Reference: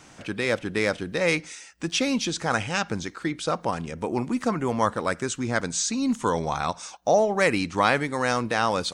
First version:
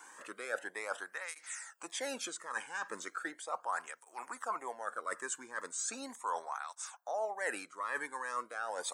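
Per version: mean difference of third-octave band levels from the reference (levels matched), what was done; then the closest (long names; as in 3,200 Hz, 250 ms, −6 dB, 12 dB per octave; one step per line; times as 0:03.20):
10.0 dB: high-pass filter 1,000 Hz 12 dB per octave
flat-topped bell 3,600 Hz −13.5 dB
reversed playback
downward compressor 6 to 1, threshold −38 dBFS, peak gain reduction 17.5 dB
reversed playback
through-zero flanger with one copy inverted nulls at 0.37 Hz, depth 1.6 ms
level +5.5 dB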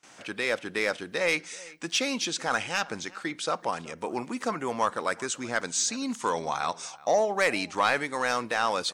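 4.0 dB: high-pass filter 570 Hz 6 dB per octave
noise gate with hold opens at −43 dBFS
soft clipping −12.5 dBFS, distortion −19 dB
slap from a distant wall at 65 metres, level −21 dB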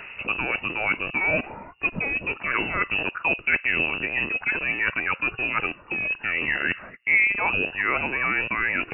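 13.5 dB: loose part that buzzes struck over −39 dBFS, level −23 dBFS
reversed playback
downward compressor, threshold −30 dBFS, peak gain reduction 14 dB
reversed playback
phase shifter 0.28 Hz, delay 3 ms, feedback 46%
voice inversion scrambler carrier 2,800 Hz
level +8 dB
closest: second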